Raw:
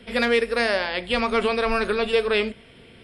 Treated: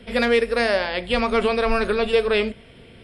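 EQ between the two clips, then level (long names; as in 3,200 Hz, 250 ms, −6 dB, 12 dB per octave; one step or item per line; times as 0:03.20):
low-shelf EQ 160 Hz +6.5 dB
parametric band 590 Hz +3 dB 0.77 octaves
0.0 dB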